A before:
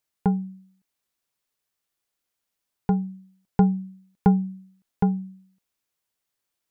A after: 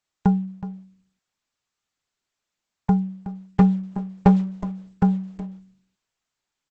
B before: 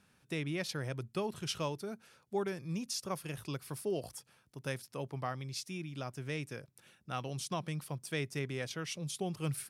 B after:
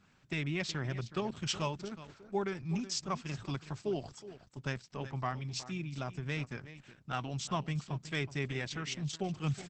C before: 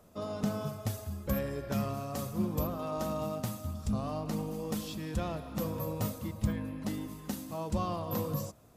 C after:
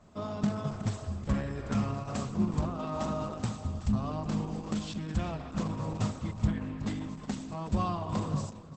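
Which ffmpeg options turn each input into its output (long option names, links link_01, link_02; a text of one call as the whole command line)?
ffmpeg -i in.wav -af "adynamicsmooth=sensitivity=4:basefreq=5400,equalizer=frequency=315:width_type=o:width=0.33:gain=-4,equalizer=frequency=500:width_type=o:width=0.33:gain=-11,equalizer=frequency=8000:width_type=o:width=0.33:gain=8,aecho=1:1:370:0.188,volume=11.5dB,asoftclip=hard,volume=-11.5dB,volume=4dB" -ar 48000 -c:a libopus -b:a 10k out.opus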